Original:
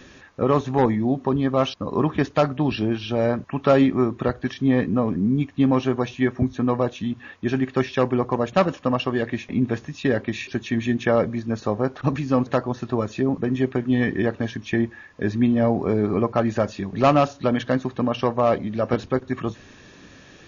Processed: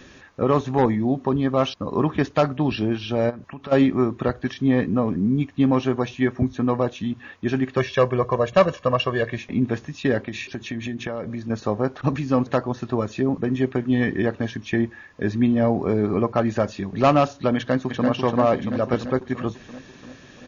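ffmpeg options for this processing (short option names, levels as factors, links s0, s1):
-filter_complex "[0:a]asplit=3[s0][s1][s2];[s0]afade=t=out:st=3.29:d=0.02[s3];[s1]acompressor=threshold=0.02:ratio=4:attack=3.2:release=140:knee=1:detection=peak,afade=t=in:st=3.29:d=0.02,afade=t=out:st=3.71:d=0.02[s4];[s2]afade=t=in:st=3.71:d=0.02[s5];[s3][s4][s5]amix=inputs=3:normalize=0,asettb=1/sr,asplit=3[s6][s7][s8];[s6]atrim=end=7.774[s9];[s7]atrim=start=7.77:end=9.38,asetpts=PTS-STARTPTS,afade=t=in:d=0.004:c=qsin,afade=t=out:st=1.606:d=0.004:c=qsin,aecho=1:1:1.8:0.65,atrim=end_sample=71001[s10];[s8]atrim=start=9.376[s11];[s9][s10]acrossfade=d=0.004:c1=hsin:c2=qsin[s12];[s12][s11]acrossfade=d=0.004:c1=qsin:c2=hsin,asettb=1/sr,asplit=3[s13][s14][s15];[s13]atrim=end=10.224[s16];[s14]atrim=start=10.22:end=11.5,asetpts=PTS-STARTPTS,afade=t=in:d=0.004:c=qsin,afade=t=out:st=1.276:d=0.004:c=qsin,acompressor=threshold=0.0562:ratio=6:attack=3.2:release=140:knee=1:detection=peak[s17];[s15]atrim=start=11.496[s18];[s16][s17]acrossfade=d=0.004:c1=hsin:c2=qsin[s19];[s19][s18]acrossfade=d=0.004:c1=qsin:c2=hsin,asplit=2[s20][s21];[s21]afade=t=in:st=17.56:d=0.01,afade=t=out:st=18.08:d=0.01,aecho=0:1:340|680|1020|1360|1700|2040|2380|2720|3060|3400:0.630957|0.410122|0.266579|0.173277|0.11263|0.0732094|0.0475861|0.030931|0.0201051|0.0130683[s22];[s20][s22]amix=inputs=2:normalize=0"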